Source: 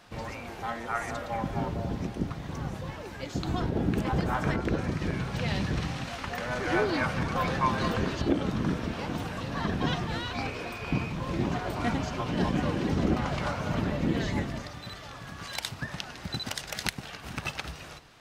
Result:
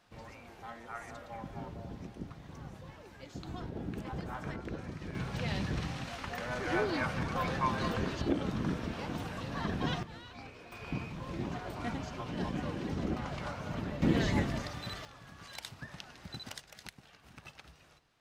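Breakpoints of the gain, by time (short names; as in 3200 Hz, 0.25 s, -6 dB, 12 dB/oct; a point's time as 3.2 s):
-12 dB
from 5.15 s -5 dB
from 10.03 s -15.5 dB
from 10.72 s -8.5 dB
from 14.02 s 0 dB
from 15.05 s -10.5 dB
from 16.6 s -17.5 dB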